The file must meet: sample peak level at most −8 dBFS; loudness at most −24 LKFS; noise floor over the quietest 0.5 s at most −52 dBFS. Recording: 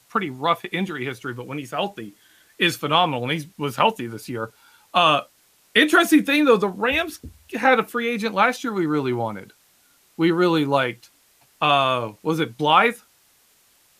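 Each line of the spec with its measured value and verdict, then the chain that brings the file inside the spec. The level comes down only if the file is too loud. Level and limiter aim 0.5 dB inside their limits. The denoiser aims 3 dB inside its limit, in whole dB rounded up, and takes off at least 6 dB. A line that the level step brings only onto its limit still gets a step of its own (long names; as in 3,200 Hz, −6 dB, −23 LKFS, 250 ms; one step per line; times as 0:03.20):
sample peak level −4.0 dBFS: out of spec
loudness −21.0 LKFS: out of spec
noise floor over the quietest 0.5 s −59 dBFS: in spec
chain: level −3.5 dB
brickwall limiter −8.5 dBFS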